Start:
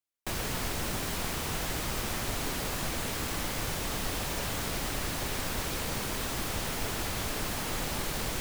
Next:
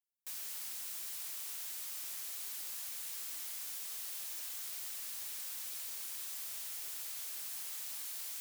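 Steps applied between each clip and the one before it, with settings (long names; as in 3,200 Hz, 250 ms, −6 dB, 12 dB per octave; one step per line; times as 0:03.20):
first difference
level −6.5 dB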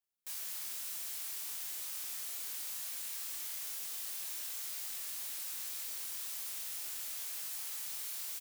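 double-tracking delay 26 ms −3.5 dB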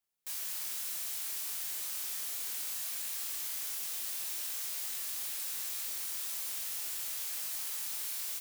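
convolution reverb RT60 4.5 s, pre-delay 24 ms, DRR 8.5 dB
level +3 dB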